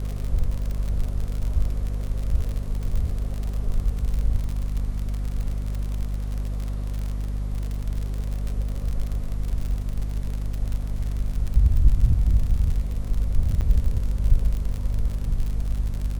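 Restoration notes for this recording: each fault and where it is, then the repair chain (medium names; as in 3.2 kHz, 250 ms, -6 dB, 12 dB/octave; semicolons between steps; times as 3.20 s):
crackle 55 per s -27 dBFS
hum 50 Hz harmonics 5 -27 dBFS
13.61–13.62 s: dropout 7.9 ms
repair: de-click; de-hum 50 Hz, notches 5; interpolate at 13.61 s, 7.9 ms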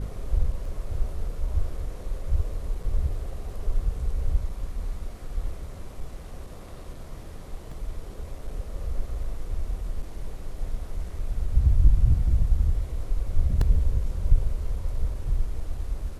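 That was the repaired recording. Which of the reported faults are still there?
nothing left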